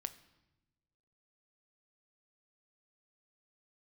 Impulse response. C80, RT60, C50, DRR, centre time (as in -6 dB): 18.0 dB, 1.0 s, 16.0 dB, 10.0 dB, 5 ms